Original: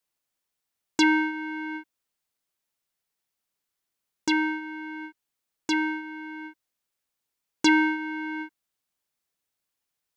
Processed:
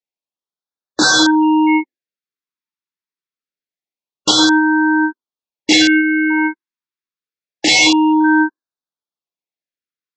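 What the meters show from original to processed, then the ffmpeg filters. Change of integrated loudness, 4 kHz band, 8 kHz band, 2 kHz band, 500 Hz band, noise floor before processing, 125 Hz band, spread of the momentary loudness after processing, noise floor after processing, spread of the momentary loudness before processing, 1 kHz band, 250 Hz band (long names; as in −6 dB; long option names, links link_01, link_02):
+13.5 dB, +20.0 dB, +20.0 dB, +12.5 dB, +14.5 dB, −84 dBFS, can't be measured, 10 LU, below −85 dBFS, 18 LU, +13.5 dB, +13.5 dB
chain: -af "afftdn=noise_reduction=31:noise_floor=-40,bandreject=frequency=3000:width=16,acontrast=37,aresample=16000,aeval=exprs='(mod(6.68*val(0)+1,2)-1)/6.68':channel_layout=same,aresample=44100,highpass=170,lowpass=4800,alimiter=level_in=20.5dB:limit=-1dB:release=50:level=0:latency=1,afftfilt=real='re*(1-between(b*sr/1024,580*pow(2500/580,0.5+0.5*sin(2*PI*0.26*pts/sr))/1.41,580*pow(2500/580,0.5+0.5*sin(2*PI*0.26*pts/sr))*1.41))':imag='im*(1-between(b*sr/1024,580*pow(2500/580,0.5+0.5*sin(2*PI*0.26*pts/sr))/1.41,580*pow(2500/580,0.5+0.5*sin(2*PI*0.26*pts/sr))*1.41))':win_size=1024:overlap=0.75,volume=-2dB"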